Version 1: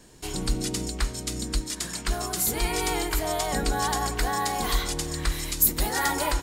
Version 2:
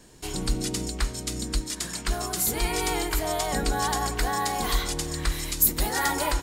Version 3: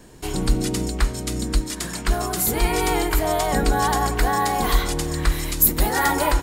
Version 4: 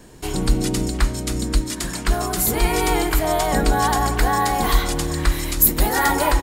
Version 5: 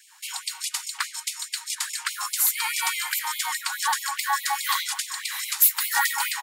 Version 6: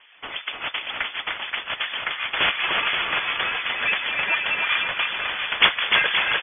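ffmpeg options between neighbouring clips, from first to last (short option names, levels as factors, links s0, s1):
-af anull
-af "equalizer=f=5800:t=o:w=2.3:g=-6.5,volume=2.24"
-filter_complex "[0:a]asplit=2[s0][s1];[s1]adelay=291.5,volume=0.2,highshelf=f=4000:g=-6.56[s2];[s0][s2]amix=inputs=2:normalize=0,volume=1.19"
-filter_complex "[0:a]acrossover=split=610|6700[s0][s1][s2];[s0]alimiter=limit=0.141:level=0:latency=1:release=308[s3];[s3][s1][s2]amix=inputs=3:normalize=0,asoftclip=type=hard:threshold=0.282,afftfilt=real='re*gte(b*sr/1024,740*pow(2100/740,0.5+0.5*sin(2*PI*4.8*pts/sr)))':imag='im*gte(b*sr/1024,740*pow(2100/740,0.5+0.5*sin(2*PI*4.8*pts/sr)))':win_size=1024:overlap=0.75"
-af "acrusher=samples=10:mix=1:aa=0.000001:lfo=1:lforange=6:lforate=2.8,lowpass=f=3000:t=q:w=0.5098,lowpass=f=3000:t=q:w=0.6013,lowpass=f=3000:t=q:w=0.9,lowpass=f=3000:t=q:w=2.563,afreqshift=-3500,aecho=1:1:300|525|693.8|820.3|915.2:0.631|0.398|0.251|0.158|0.1,volume=1.19"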